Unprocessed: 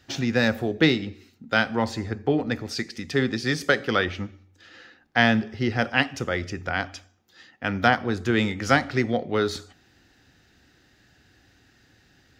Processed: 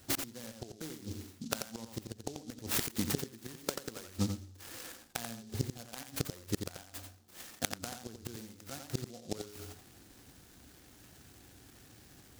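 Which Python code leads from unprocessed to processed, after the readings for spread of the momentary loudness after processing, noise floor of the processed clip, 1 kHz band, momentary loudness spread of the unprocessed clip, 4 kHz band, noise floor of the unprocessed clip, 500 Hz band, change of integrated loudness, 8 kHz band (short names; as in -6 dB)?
21 LU, -59 dBFS, -20.5 dB, 8 LU, -12.5 dB, -60 dBFS, -18.5 dB, -15.5 dB, +1.5 dB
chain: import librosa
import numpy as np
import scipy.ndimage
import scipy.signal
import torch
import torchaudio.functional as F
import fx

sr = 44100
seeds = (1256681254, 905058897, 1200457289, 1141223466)

y = fx.gate_flip(x, sr, shuts_db=-19.0, range_db=-27)
y = y + 10.0 ** (-7.0 / 20.0) * np.pad(y, (int(87 * sr / 1000.0), 0))[:len(y)]
y = fx.noise_mod_delay(y, sr, seeds[0], noise_hz=5100.0, depth_ms=0.14)
y = y * 10.0 ** (1.0 / 20.0)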